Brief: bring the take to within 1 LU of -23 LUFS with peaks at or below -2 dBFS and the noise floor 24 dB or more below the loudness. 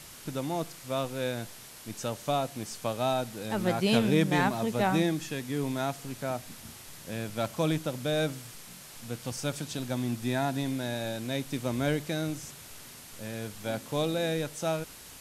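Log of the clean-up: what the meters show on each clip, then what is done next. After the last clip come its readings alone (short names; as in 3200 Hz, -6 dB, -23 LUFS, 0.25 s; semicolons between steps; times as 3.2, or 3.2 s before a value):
noise floor -48 dBFS; noise floor target -55 dBFS; loudness -31.0 LUFS; peak -11.5 dBFS; loudness target -23.0 LUFS
-> denoiser 7 dB, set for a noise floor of -48 dBFS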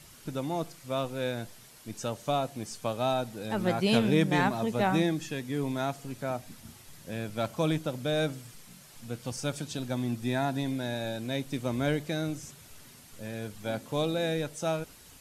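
noise floor -53 dBFS; noise floor target -55 dBFS
-> denoiser 6 dB, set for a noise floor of -53 dBFS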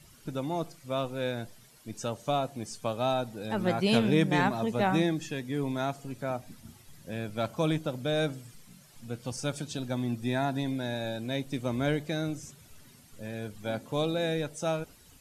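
noise floor -57 dBFS; loudness -31.5 LUFS; peak -11.5 dBFS; loudness target -23.0 LUFS
-> gain +8.5 dB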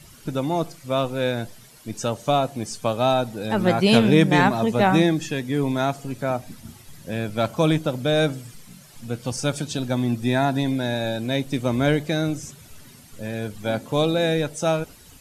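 loudness -23.0 LUFS; peak -3.0 dBFS; noise floor -48 dBFS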